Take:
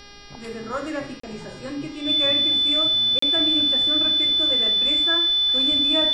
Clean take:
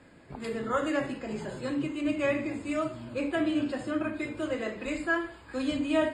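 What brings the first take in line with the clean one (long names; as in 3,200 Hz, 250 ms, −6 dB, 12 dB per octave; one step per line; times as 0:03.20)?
hum removal 406.9 Hz, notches 14
notch filter 3,500 Hz, Q 30
repair the gap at 0:01.20/0:03.19, 34 ms
downward expander −30 dBFS, range −21 dB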